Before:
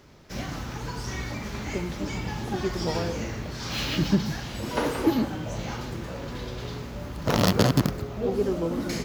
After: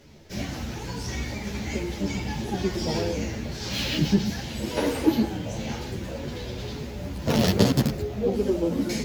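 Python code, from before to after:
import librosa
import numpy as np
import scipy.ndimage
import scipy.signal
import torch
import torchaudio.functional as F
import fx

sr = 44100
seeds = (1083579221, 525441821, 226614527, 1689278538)

p1 = fx.peak_eq(x, sr, hz=1200.0, db=-10.0, octaves=0.68)
p2 = fx.fold_sine(p1, sr, drive_db=10, ceiling_db=-2.5)
p3 = p1 + F.gain(torch.from_numpy(p2), -12.0).numpy()
p4 = fx.ensemble(p3, sr)
y = F.gain(torch.from_numpy(p4), -1.5).numpy()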